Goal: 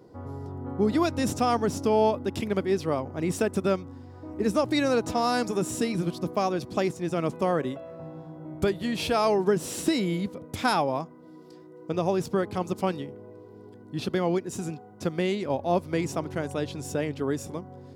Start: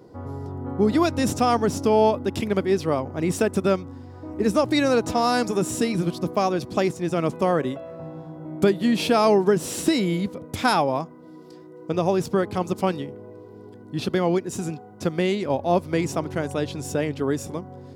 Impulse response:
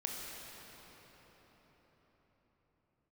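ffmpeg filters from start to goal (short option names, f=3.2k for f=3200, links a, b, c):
-filter_complex "[0:a]asplit=3[a][b][c];[a]afade=t=out:st=8.53:d=0.02[d];[b]asubboost=boost=10.5:cutoff=66,afade=t=in:st=8.53:d=0.02,afade=t=out:st=9.38:d=0.02[e];[c]afade=t=in:st=9.38:d=0.02[f];[d][e][f]amix=inputs=3:normalize=0,volume=-4dB"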